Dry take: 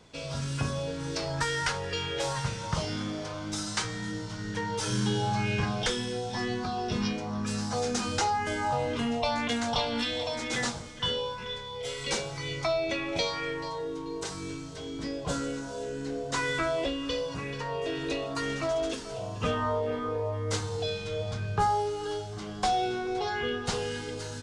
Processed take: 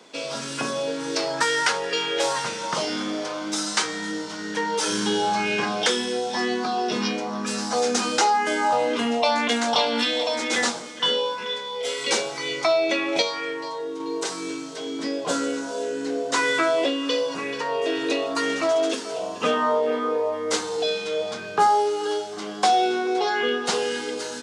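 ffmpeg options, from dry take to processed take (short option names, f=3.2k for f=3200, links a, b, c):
-filter_complex "[0:a]asplit=3[a][b][c];[a]atrim=end=13.222[d];[b]atrim=start=13.218:end=14.002,asetpts=PTS-STARTPTS,volume=-4dB[e];[c]atrim=start=13.998[f];[d][e]acrossfade=d=0.004:c1=hsin:c2=hsin[g];[g][f]acrossfade=d=0.004:c1=hsin:c2=hsin,highpass=f=240:w=0.5412,highpass=f=240:w=1.3066,volume=8dB"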